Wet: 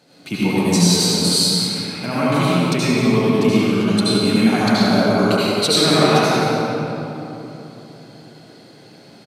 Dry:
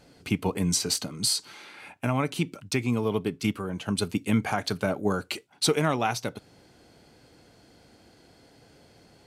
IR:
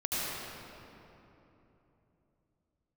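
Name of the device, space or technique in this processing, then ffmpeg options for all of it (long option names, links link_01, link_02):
PA in a hall: -filter_complex "[0:a]highpass=frequency=130:width=0.5412,highpass=frequency=130:width=1.3066,equalizer=frequency=4000:width_type=o:width=0.27:gain=7,aecho=1:1:179:0.355[link_01];[1:a]atrim=start_sample=2205[link_02];[link_01][link_02]afir=irnorm=-1:irlink=0,volume=2.5dB"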